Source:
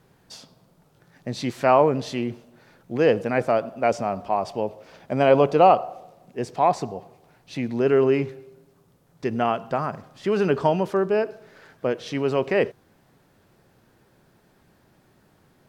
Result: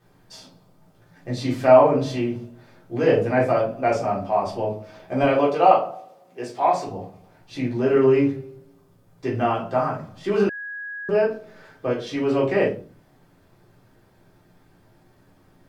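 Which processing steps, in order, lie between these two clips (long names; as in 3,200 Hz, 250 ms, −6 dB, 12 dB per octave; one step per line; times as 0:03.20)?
0:05.22–0:06.87: high-pass filter 510 Hz 6 dB per octave
rectangular room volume 190 cubic metres, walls furnished, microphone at 3.7 metres
0:10.49–0:11.09: beep over 1,660 Hz −23.5 dBFS
level −7 dB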